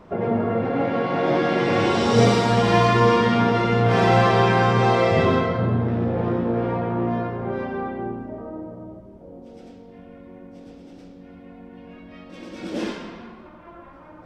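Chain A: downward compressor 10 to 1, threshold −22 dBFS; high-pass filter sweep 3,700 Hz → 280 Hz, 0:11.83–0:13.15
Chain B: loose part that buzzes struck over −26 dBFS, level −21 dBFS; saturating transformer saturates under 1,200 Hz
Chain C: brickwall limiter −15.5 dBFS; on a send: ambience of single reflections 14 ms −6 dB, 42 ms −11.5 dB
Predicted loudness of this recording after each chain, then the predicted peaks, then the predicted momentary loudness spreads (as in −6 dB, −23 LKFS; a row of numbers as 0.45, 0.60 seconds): −35.5, −24.0, −24.5 LKFS; −16.0, −5.5, −11.5 dBFS; 20, 22, 20 LU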